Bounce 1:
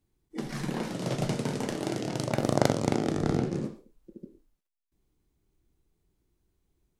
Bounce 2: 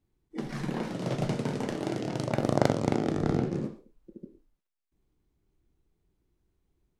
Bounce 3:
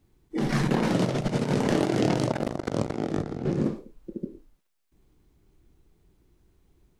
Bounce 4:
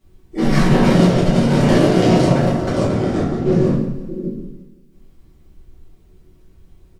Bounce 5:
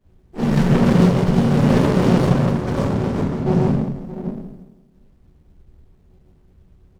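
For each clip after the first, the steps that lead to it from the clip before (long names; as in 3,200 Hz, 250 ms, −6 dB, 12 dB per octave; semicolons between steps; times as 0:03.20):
high-shelf EQ 4,800 Hz −9 dB
compressor whose output falls as the input rises −33 dBFS, ratio −0.5; level +7.5 dB
repeating echo 170 ms, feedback 42%, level −14 dB; convolution reverb RT60 0.60 s, pre-delay 5 ms, DRR −9 dB
notch comb filter 330 Hz; windowed peak hold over 33 samples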